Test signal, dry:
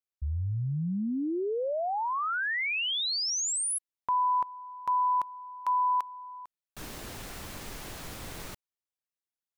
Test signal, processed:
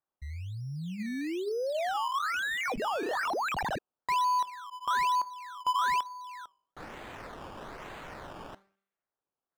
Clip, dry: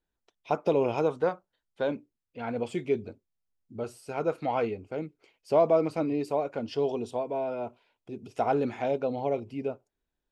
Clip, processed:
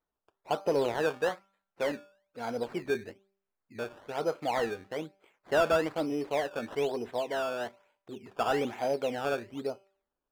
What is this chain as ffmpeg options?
ffmpeg -i in.wav -filter_complex "[0:a]bandreject=frequency=195.3:width_type=h:width=4,bandreject=frequency=390.6:width_type=h:width=4,bandreject=frequency=585.9:width_type=h:width=4,bandreject=frequency=781.2:width_type=h:width=4,bandreject=frequency=976.5:width_type=h:width=4,bandreject=frequency=1171.8:width_type=h:width=4,bandreject=frequency=1367.1:width_type=h:width=4,bandreject=frequency=1562.4:width_type=h:width=4,bandreject=frequency=1757.7:width_type=h:width=4,bandreject=frequency=1953:width_type=h:width=4,bandreject=frequency=2148.3:width_type=h:width=4,bandreject=frequency=2343.6:width_type=h:width=4,bandreject=frequency=2538.9:width_type=h:width=4,bandreject=frequency=2734.2:width_type=h:width=4,bandreject=frequency=2929.5:width_type=h:width=4,bandreject=frequency=3124.8:width_type=h:width=4,bandreject=frequency=3320.1:width_type=h:width=4,bandreject=frequency=3515.4:width_type=h:width=4,bandreject=frequency=3710.7:width_type=h:width=4,bandreject=frequency=3906:width_type=h:width=4,bandreject=frequency=4101.3:width_type=h:width=4,bandreject=frequency=4296.6:width_type=h:width=4,bandreject=frequency=4491.9:width_type=h:width=4,bandreject=frequency=4687.2:width_type=h:width=4,bandreject=frequency=4882.5:width_type=h:width=4,bandreject=frequency=5077.8:width_type=h:width=4,bandreject=frequency=5273.1:width_type=h:width=4,acrusher=samples=15:mix=1:aa=0.000001:lfo=1:lforange=15:lforate=1.1,asplit=2[link_01][link_02];[link_02]highpass=frequency=720:poles=1,volume=11dB,asoftclip=type=tanh:threshold=-12dB[link_03];[link_01][link_03]amix=inputs=2:normalize=0,lowpass=frequency=1500:poles=1,volume=-6dB,volume=-3dB" out.wav

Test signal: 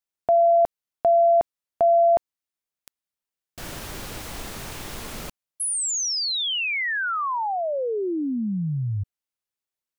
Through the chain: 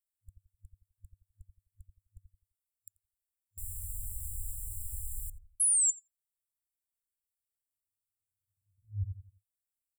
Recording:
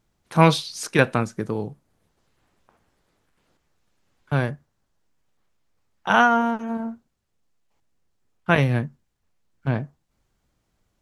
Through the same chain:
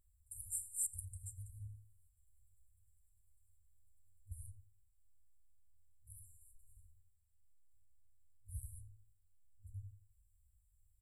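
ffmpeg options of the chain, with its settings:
ffmpeg -i in.wav -filter_complex "[0:a]afftfilt=real='re*(1-between(b*sr/4096,100,7200))':imag='im*(1-between(b*sr/4096,100,7200))':win_size=4096:overlap=0.75,asplit=2[link_01][link_02];[link_02]adelay=86,lowpass=frequency=990:poles=1,volume=-6dB,asplit=2[link_03][link_04];[link_04]adelay=86,lowpass=frequency=990:poles=1,volume=0.33,asplit=2[link_05][link_06];[link_06]adelay=86,lowpass=frequency=990:poles=1,volume=0.33,asplit=2[link_07][link_08];[link_08]adelay=86,lowpass=frequency=990:poles=1,volume=0.33[link_09];[link_01][link_03][link_05][link_07][link_09]amix=inputs=5:normalize=0" out.wav

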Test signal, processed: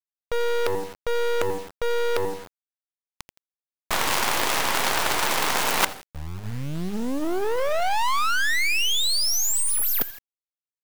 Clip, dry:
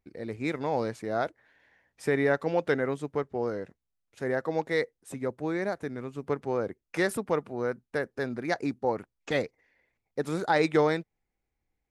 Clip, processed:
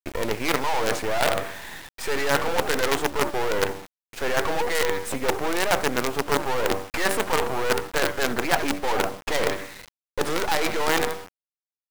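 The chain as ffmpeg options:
ffmpeg -i in.wav -filter_complex "[0:a]equalizer=frequency=930:width=3.4:gain=5,asplit=2[link_01][link_02];[link_02]adynamicsmooth=sensitivity=6.5:basefreq=2900,volume=-2dB[link_03];[link_01][link_03]amix=inputs=2:normalize=0,bandreject=frequency=96.3:width_type=h:width=4,bandreject=frequency=192.6:width_type=h:width=4,bandreject=frequency=288.9:width_type=h:width=4,bandreject=frequency=385.2:width_type=h:width=4,bandreject=frequency=481.5:width_type=h:width=4,bandreject=frequency=577.8:width_type=h:width=4,bandreject=frequency=674.1:width_type=h:width=4,bandreject=frequency=770.4:width_type=h:width=4,asplit=4[link_04][link_05][link_06][link_07];[link_05]adelay=84,afreqshift=-90,volume=-20dB[link_08];[link_06]adelay=168,afreqshift=-180,volume=-28.9dB[link_09];[link_07]adelay=252,afreqshift=-270,volume=-37.7dB[link_10];[link_04][link_08][link_09][link_10]amix=inputs=4:normalize=0,asplit=2[link_11][link_12];[link_12]highpass=frequency=720:poles=1,volume=30dB,asoftclip=type=tanh:threshold=-5dB[link_13];[link_11][link_13]amix=inputs=2:normalize=0,lowpass=frequency=6500:poles=1,volume=-6dB,areverse,acompressor=threshold=-20dB:ratio=16,areverse,lowshelf=frequency=190:gain=-9.5,acrusher=bits=4:dc=4:mix=0:aa=0.000001,volume=3dB" out.wav

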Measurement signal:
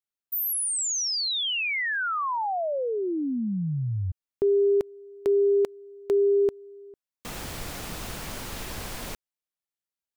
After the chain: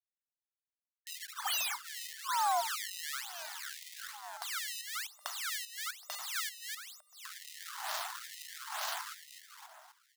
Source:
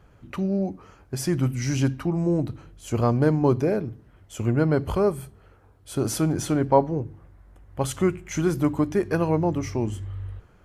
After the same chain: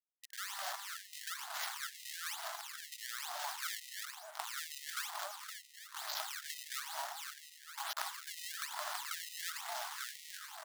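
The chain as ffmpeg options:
ffmpeg -i in.wav -filter_complex "[0:a]alimiter=limit=-16.5dB:level=0:latency=1:release=61,acompressor=threshold=-27dB:ratio=20:attack=2.9:release=128:knee=6:detection=rms,aresample=11025,aeval=exprs='(mod(15.8*val(0)+1,2)-1)/15.8':channel_layout=same,aresample=44100,adynamicequalizer=threshold=0.00631:dfrequency=380:dqfactor=0.72:tfrequency=380:tqfactor=0.72:attack=5:release=100:ratio=0.4:range=3:mode=boostabove:tftype=bell,agate=range=-33dB:threshold=-48dB:ratio=3:detection=peak,acrusher=bits=5:mix=0:aa=0.000001,asplit=2[link_01][link_02];[link_02]adelay=257,lowpass=frequency=3100:poles=1,volume=-4.5dB,asplit=2[link_03][link_04];[link_04]adelay=257,lowpass=frequency=3100:poles=1,volume=0.42,asplit=2[link_05][link_06];[link_06]adelay=257,lowpass=frequency=3100:poles=1,volume=0.42,asplit=2[link_07][link_08];[link_08]adelay=257,lowpass=frequency=3100:poles=1,volume=0.42,asplit=2[link_09][link_10];[link_10]adelay=257,lowpass=frequency=3100:poles=1,volume=0.42[link_11];[link_03][link_05][link_07][link_09][link_11]amix=inputs=5:normalize=0[link_12];[link_01][link_12]amix=inputs=2:normalize=0,acrossover=split=760[link_13][link_14];[link_13]aeval=exprs='val(0)*(1-0.7/2+0.7/2*cos(2*PI*2.2*n/s))':channel_layout=same[link_15];[link_14]aeval=exprs='val(0)*(1-0.7/2-0.7/2*cos(2*PI*2.2*n/s))':channel_layout=same[link_16];[link_15][link_16]amix=inputs=2:normalize=0,acrusher=samples=22:mix=1:aa=0.000001:lfo=1:lforange=35.2:lforate=1.1,acrossover=split=150[link_17][link_18];[link_18]acompressor=threshold=-41dB:ratio=2:attack=1.4:release=995:knee=2.83:detection=peak[link_19];[link_17][link_19]amix=inputs=2:normalize=0,equalizer=frequency=2400:width=2:gain=-8.5,afftfilt=real='re*gte(b*sr/1024,580*pow(1900/580,0.5+0.5*sin(2*PI*1.1*pts/sr)))':imag='im*gte(b*sr/1024,580*pow(1900/580,0.5+0.5*sin(2*PI*1.1*pts/sr)))':win_size=1024:overlap=0.75,volume=9.5dB" out.wav

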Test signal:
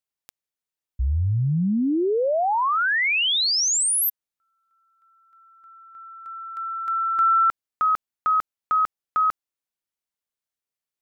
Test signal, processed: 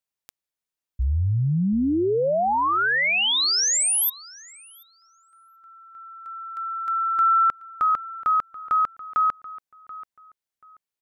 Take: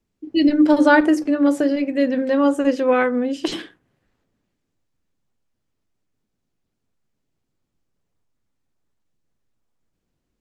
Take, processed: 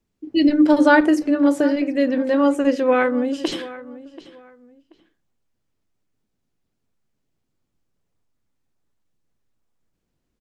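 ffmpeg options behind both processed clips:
ffmpeg -i in.wav -filter_complex "[0:a]asplit=2[link_01][link_02];[link_02]adelay=733,lowpass=frequency=3200:poles=1,volume=-17dB,asplit=2[link_03][link_04];[link_04]adelay=733,lowpass=frequency=3200:poles=1,volume=0.25[link_05];[link_01][link_03][link_05]amix=inputs=3:normalize=0" out.wav

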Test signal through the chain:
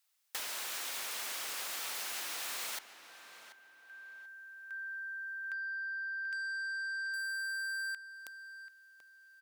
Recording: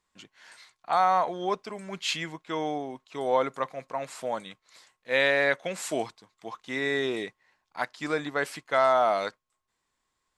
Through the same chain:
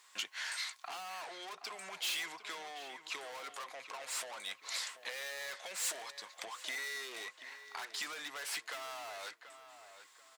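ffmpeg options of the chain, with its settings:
ffmpeg -i in.wav -filter_complex "[0:a]highpass=frequency=96:width=0.5412,highpass=frequency=96:width=1.3066,asplit=2[link_01][link_02];[link_02]highpass=frequency=720:poles=1,volume=33dB,asoftclip=type=tanh:threshold=-10dB[link_03];[link_01][link_03]amix=inputs=2:normalize=0,lowpass=frequency=1200:poles=1,volume=-6dB,acompressor=threshold=-33dB:ratio=16,aderivative,asplit=2[link_04][link_05];[link_05]adelay=735,lowpass=frequency=3000:poles=1,volume=-11dB,asplit=2[link_06][link_07];[link_07]adelay=735,lowpass=frequency=3000:poles=1,volume=0.34,asplit=2[link_08][link_09];[link_09]adelay=735,lowpass=frequency=3000:poles=1,volume=0.34,asplit=2[link_10][link_11];[link_11]adelay=735,lowpass=frequency=3000:poles=1,volume=0.34[link_12];[link_06][link_08][link_10][link_12]amix=inputs=4:normalize=0[link_13];[link_04][link_13]amix=inputs=2:normalize=0,volume=7dB" out.wav

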